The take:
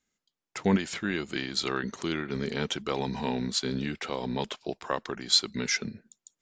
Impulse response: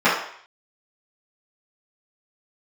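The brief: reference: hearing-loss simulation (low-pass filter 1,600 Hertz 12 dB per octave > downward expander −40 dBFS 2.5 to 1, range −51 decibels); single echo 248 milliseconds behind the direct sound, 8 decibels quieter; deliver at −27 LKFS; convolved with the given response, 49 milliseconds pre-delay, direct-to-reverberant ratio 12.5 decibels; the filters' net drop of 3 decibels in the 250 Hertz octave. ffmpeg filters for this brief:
-filter_complex "[0:a]equalizer=frequency=250:width_type=o:gain=-4,aecho=1:1:248:0.398,asplit=2[link_01][link_02];[1:a]atrim=start_sample=2205,adelay=49[link_03];[link_02][link_03]afir=irnorm=-1:irlink=0,volume=-35.5dB[link_04];[link_01][link_04]amix=inputs=2:normalize=0,lowpass=1600,agate=range=-51dB:threshold=-40dB:ratio=2.5,volume=7dB"

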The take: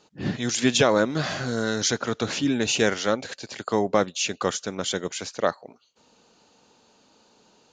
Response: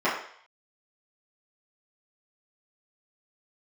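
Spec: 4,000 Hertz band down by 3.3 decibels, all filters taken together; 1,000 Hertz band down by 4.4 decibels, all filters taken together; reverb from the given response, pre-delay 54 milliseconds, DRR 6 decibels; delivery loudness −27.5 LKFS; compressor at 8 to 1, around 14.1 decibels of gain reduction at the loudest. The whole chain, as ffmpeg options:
-filter_complex "[0:a]equalizer=frequency=1000:width_type=o:gain=-6,equalizer=frequency=4000:width_type=o:gain=-4,acompressor=threshold=-31dB:ratio=8,asplit=2[link_01][link_02];[1:a]atrim=start_sample=2205,adelay=54[link_03];[link_02][link_03]afir=irnorm=-1:irlink=0,volume=-21.5dB[link_04];[link_01][link_04]amix=inputs=2:normalize=0,volume=7.5dB"

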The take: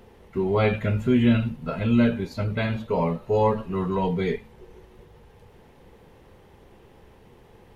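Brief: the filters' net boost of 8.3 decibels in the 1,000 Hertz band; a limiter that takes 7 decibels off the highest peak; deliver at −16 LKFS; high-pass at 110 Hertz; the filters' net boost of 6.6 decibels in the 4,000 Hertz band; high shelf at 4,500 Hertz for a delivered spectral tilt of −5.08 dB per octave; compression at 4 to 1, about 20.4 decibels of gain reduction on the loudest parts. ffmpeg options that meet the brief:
ffmpeg -i in.wav -af "highpass=110,equalizer=frequency=1000:width_type=o:gain=9,equalizer=frequency=4000:width_type=o:gain=4.5,highshelf=frequency=4500:gain=7.5,acompressor=threshold=-37dB:ratio=4,volume=26.5dB,alimiter=limit=-4dB:level=0:latency=1" out.wav

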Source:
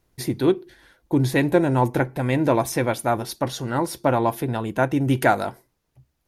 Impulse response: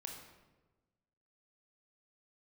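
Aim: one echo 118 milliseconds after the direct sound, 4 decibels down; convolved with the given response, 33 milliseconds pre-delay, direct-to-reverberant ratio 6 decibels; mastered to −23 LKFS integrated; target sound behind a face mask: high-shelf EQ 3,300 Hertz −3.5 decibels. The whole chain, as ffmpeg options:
-filter_complex "[0:a]aecho=1:1:118:0.631,asplit=2[link_01][link_02];[1:a]atrim=start_sample=2205,adelay=33[link_03];[link_02][link_03]afir=irnorm=-1:irlink=0,volume=-3dB[link_04];[link_01][link_04]amix=inputs=2:normalize=0,highshelf=frequency=3300:gain=-3.5,volume=-2.5dB"

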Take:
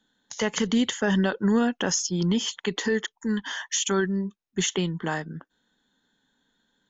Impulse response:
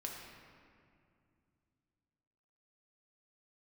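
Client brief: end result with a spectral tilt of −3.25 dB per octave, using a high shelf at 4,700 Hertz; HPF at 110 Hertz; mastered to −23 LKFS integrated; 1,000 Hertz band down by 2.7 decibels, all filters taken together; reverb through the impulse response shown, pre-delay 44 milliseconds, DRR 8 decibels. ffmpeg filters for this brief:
-filter_complex "[0:a]highpass=110,equalizer=frequency=1000:width_type=o:gain=-4,highshelf=frequency=4700:gain=6,asplit=2[link_01][link_02];[1:a]atrim=start_sample=2205,adelay=44[link_03];[link_02][link_03]afir=irnorm=-1:irlink=0,volume=-7dB[link_04];[link_01][link_04]amix=inputs=2:normalize=0,volume=1.5dB"

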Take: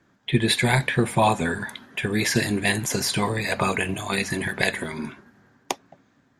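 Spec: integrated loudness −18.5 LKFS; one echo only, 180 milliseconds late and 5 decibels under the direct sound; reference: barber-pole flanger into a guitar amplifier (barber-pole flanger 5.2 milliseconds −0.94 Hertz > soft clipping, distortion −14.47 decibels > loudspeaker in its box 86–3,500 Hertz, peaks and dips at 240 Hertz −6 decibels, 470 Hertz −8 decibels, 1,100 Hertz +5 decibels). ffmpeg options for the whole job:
ffmpeg -i in.wav -filter_complex "[0:a]aecho=1:1:180:0.562,asplit=2[link_01][link_02];[link_02]adelay=5.2,afreqshift=-0.94[link_03];[link_01][link_03]amix=inputs=2:normalize=1,asoftclip=threshold=-17.5dB,highpass=86,equalizer=frequency=240:width_type=q:width=4:gain=-6,equalizer=frequency=470:width_type=q:width=4:gain=-8,equalizer=frequency=1100:width_type=q:width=4:gain=5,lowpass=frequency=3500:width=0.5412,lowpass=frequency=3500:width=1.3066,volume=10dB" out.wav

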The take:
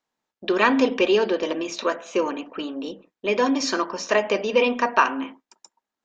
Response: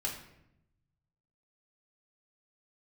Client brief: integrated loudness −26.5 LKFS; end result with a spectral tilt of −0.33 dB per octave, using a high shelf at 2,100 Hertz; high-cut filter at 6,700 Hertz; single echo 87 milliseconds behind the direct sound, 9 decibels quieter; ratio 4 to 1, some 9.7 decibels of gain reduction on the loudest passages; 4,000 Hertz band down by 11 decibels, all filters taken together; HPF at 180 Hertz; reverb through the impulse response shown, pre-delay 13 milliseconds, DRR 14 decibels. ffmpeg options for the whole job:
-filter_complex "[0:a]highpass=180,lowpass=6700,highshelf=frequency=2100:gain=-6.5,equalizer=frequency=4000:width_type=o:gain=-9,acompressor=threshold=-26dB:ratio=4,aecho=1:1:87:0.355,asplit=2[link_01][link_02];[1:a]atrim=start_sample=2205,adelay=13[link_03];[link_02][link_03]afir=irnorm=-1:irlink=0,volume=-16.5dB[link_04];[link_01][link_04]amix=inputs=2:normalize=0,volume=4dB"

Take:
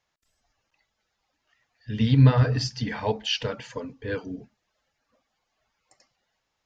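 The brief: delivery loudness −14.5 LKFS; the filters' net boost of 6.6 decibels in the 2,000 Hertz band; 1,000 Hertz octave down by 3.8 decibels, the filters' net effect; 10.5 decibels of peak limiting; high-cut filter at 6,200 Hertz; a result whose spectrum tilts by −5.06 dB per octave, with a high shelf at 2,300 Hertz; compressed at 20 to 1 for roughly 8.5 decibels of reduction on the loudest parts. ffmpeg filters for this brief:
ffmpeg -i in.wav -af "lowpass=6200,equalizer=frequency=1000:width_type=o:gain=-8.5,equalizer=frequency=2000:width_type=o:gain=8.5,highshelf=frequency=2300:gain=5.5,acompressor=threshold=-19dB:ratio=20,volume=18dB,alimiter=limit=-4.5dB:level=0:latency=1" out.wav

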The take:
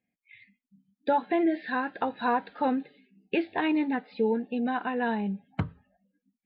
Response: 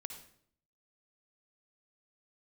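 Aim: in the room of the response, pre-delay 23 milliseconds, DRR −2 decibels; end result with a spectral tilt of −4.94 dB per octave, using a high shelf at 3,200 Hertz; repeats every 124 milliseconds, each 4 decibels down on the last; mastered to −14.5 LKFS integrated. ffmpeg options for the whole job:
-filter_complex "[0:a]highshelf=frequency=3200:gain=-3,aecho=1:1:124|248|372|496|620|744|868|992|1116:0.631|0.398|0.25|0.158|0.0994|0.0626|0.0394|0.0249|0.0157,asplit=2[link_01][link_02];[1:a]atrim=start_sample=2205,adelay=23[link_03];[link_02][link_03]afir=irnorm=-1:irlink=0,volume=5dB[link_04];[link_01][link_04]amix=inputs=2:normalize=0,volume=8.5dB"

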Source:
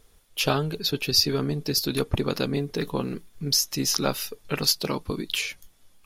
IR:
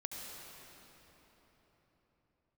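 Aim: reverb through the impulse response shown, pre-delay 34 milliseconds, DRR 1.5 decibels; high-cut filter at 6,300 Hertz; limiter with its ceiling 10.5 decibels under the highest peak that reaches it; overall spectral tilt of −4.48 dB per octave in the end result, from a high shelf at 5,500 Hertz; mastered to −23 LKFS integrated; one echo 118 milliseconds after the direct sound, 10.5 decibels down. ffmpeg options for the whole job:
-filter_complex "[0:a]lowpass=6300,highshelf=frequency=5500:gain=-4,alimiter=limit=-17.5dB:level=0:latency=1,aecho=1:1:118:0.299,asplit=2[link_01][link_02];[1:a]atrim=start_sample=2205,adelay=34[link_03];[link_02][link_03]afir=irnorm=-1:irlink=0,volume=-1dB[link_04];[link_01][link_04]amix=inputs=2:normalize=0,volume=3.5dB"

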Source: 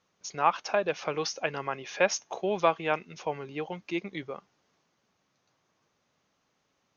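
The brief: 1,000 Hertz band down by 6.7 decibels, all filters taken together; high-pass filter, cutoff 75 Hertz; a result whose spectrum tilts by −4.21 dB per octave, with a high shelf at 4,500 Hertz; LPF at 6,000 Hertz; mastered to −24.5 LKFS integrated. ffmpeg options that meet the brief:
ffmpeg -i in.wav -af "highpass=75,lowpass=6000,equalizer=frequency=1000:width_type=o:gain=-8.5,highshelf=frequency=4500:gain=-4,volume=9.5dB" out.wav

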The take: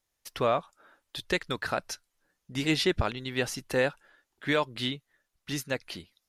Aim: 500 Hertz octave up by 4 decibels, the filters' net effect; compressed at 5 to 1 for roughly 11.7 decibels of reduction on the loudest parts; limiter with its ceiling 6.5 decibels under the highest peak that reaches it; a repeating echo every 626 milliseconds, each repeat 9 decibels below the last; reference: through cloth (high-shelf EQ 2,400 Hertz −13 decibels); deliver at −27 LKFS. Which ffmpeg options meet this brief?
ffmpeg -i in.wav -af "equalizer=frequency=500:width_type=o:gain=5.5,acompressor=threshold=-31dB:ratio=5,alimiter=level_in=1dB:limit=-24dB:level=0:latency=1,volume=-1dB,highshelf=frequency=2400:gain=-13,aecho=1:1:626|1252|1878|2504:0.355|0.124|0.0435|0.0152,volume=13.5dB" out.wav

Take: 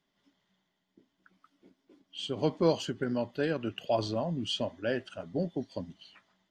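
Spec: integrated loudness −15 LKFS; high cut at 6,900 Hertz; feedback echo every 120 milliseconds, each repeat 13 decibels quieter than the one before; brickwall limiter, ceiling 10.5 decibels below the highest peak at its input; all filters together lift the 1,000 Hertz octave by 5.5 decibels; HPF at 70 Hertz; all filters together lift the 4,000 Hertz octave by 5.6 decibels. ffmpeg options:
ffmpeg -i in.wav -af "highpass=70,lowpass=6900,equalizer=frequency=1000:width_type=o:gain=7,equalizer=frequency=4000:width_type=o:gain=7.5,alimiter=limit=-21dB:level=0:latency=1,aecho=1:1:120|240|360:0.224|0.0493|0.0108,volume=18dB" out.wav

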